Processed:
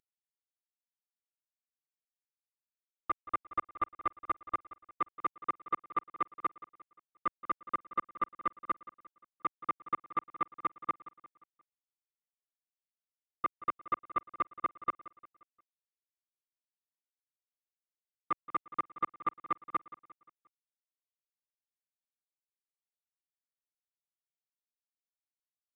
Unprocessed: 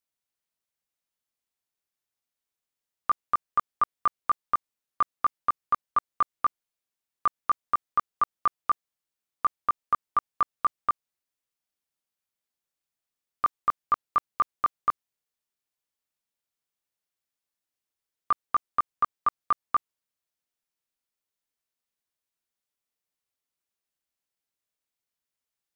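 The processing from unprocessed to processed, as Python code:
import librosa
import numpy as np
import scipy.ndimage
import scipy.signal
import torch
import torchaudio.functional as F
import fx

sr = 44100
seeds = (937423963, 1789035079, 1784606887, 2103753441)

y = fx.cvsd(x, sr, bps=16000)
y = fx.low_shelf(y, sr, hz=65.0, db=-3.5)
y = fx.echo_feedback(y, sr, ms=176, feedback_pct=45, wet_db=-17)
y = y * 10.0 ** (-6.5 / 20.0)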